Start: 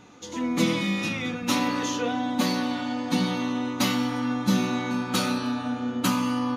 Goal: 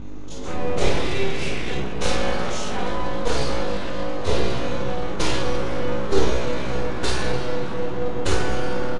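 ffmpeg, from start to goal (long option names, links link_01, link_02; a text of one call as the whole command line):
ffmpeg -i in.wav -filter_complex "[0:a]aemphasis=mode=reproduction:type=bsi,aeval=exprs='val(0)+0.0282*(sin(2*PI*50*n/s)+sin(2*PI*2*50*n/s)/2+sin(2*PI*3*50*n/s)/3+sin(2*PI*4*50*n/s)/4+sin(2*PI*5*50*n/s)/5)':channel_layout=same,highshelf=frequency=5600:gain=11,atempo=0.73,aeval=exprs='abs(val(0))':channel_layout=same,asplit=2[link_01][link_02];[link_02]aecho=0:1:31|53:0.501|0.501[link_03];[link_01][link_03]amix=inputs=2:normalize=0,aresample=22050,aresample=44100" out.wav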